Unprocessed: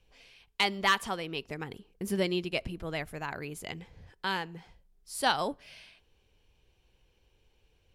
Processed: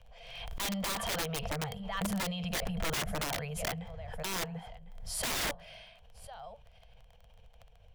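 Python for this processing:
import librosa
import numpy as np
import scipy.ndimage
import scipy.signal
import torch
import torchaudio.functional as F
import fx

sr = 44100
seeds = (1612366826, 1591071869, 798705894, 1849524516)

p1 = fx.dmg_crackle(x, sr, seeds[0], per_s=15.0, level_db=-45.0)
p2 = fx.over_compress(p1, sr, threshold_db=-33.0, ratio=-0.5)
p3 = p1 + (p2 * librosa.db_to_amplitude(3.0))
p4 = scipy.signal.sosfilt(scipy.signal.cheby1(4, 1.0, [210.0, 460.0], 'bandstop', fs=sr, output='sos'), p3)
p5 = fx.high_shelf(p4, sr, hz=2700.0, db=-10.5)
p6 = fx.small_body(p5, sr, hz=(680.0, 3200.0), ring_ms=30, db=12)
p7 = p6 + fx.echo_single(p6, sr, ms=1051, db=-20.0, dry=0)
p8 = (np.mod(10.0 ** (22.5 / 20.0) * p7 + 1.0, 2.0) - 1.0) / 10.0 ** (22.5 / 20.0)
p9 = fx.low_shelf(p8, sr, hz=66.0, db=8.0)
p10 = fx.pre_swell(p9, sr, db_per_s=41.0)
y = p10 * librosa.db_to_amplitude(-6.0)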